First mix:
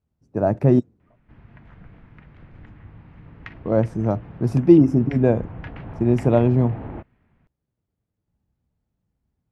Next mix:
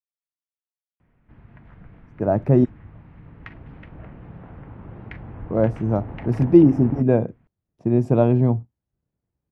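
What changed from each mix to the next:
speech: entry +1.85 s; master: add treble shelf 3.9 kHz -9.5 dB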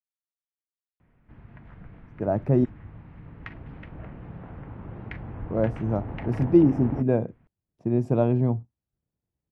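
speech -5.0 dB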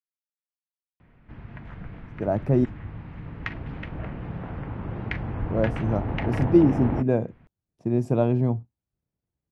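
background +6.5 dB; master: add treble shelf 3.9 kHz +9.5 dB

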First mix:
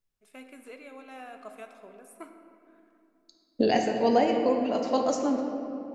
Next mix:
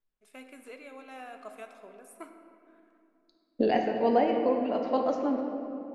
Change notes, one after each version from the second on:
second voice: add distance through air 300 m; master: add peaking EQ 81 Hz -10 dB 1.7 oct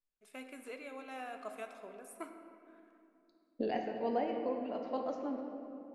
second voice -10.0 dB

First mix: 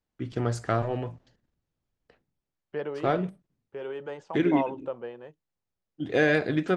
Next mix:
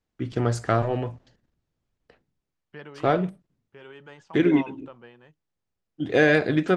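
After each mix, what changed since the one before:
first voice +4.0 dB; second voice: add peaking EQ 510 Hz -13.5 dB 1.5 oct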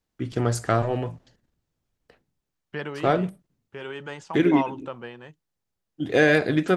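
second voice +9.5 dB; master: remove distance through air 59 m

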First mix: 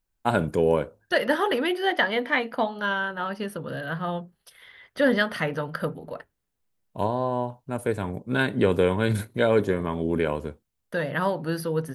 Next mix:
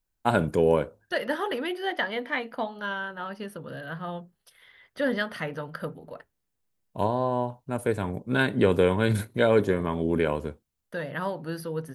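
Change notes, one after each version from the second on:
second voice -5.5 dB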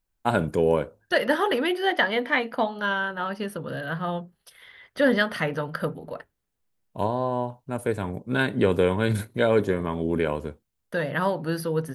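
second voice +6.0 dB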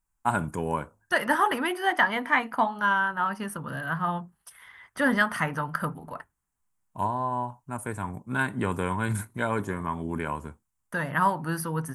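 first voice -3.0 dB; master: add graphic EQ 500/1000/4000/8000 Hz -12/+9/-11/+10 dB

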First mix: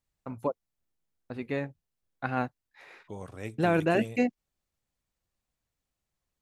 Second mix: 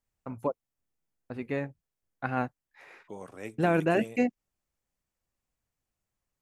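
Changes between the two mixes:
second voice: add high-pass 200 Hz 12 dB/octave; master: add peaking EQ 3.9 kHz -5.5 dB 0.58 oct

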